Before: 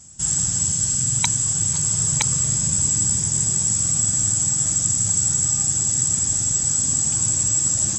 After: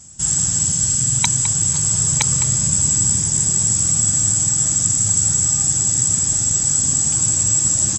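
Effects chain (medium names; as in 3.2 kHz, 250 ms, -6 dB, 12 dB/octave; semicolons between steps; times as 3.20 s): echo from a far wall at 36 m, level -10 dB; trim +3 dB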